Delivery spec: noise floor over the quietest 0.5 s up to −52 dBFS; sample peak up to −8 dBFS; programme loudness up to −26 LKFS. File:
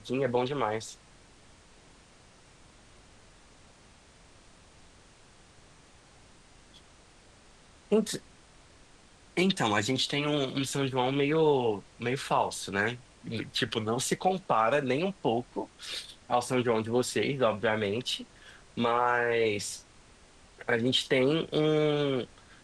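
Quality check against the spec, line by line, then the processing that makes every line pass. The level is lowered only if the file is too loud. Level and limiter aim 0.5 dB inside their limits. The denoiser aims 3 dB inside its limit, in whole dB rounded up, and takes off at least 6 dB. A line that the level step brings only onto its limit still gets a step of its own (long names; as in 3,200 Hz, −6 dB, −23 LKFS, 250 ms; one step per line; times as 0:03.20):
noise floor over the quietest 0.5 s −57 dBFS: in spec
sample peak −11.0 dBFS: in spec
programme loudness −29.0 LKFS: in spec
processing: no processing needed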